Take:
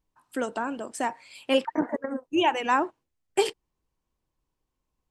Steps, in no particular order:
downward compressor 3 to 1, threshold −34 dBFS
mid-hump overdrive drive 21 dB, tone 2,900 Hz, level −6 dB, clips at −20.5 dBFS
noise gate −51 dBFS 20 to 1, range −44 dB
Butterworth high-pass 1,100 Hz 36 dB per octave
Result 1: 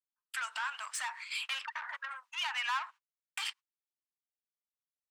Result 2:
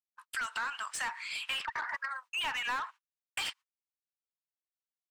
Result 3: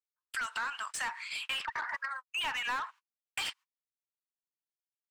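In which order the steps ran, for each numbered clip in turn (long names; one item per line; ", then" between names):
downward compressor, then noise gate, then mid-hump overdrive, then Butterworth high-pass
Butterworth high-pass, then mid-hump overdrive, then downward compressor, then noise gate
Butterworth high-pass, then noise gate, then mid-hump overdrive, then downward compressor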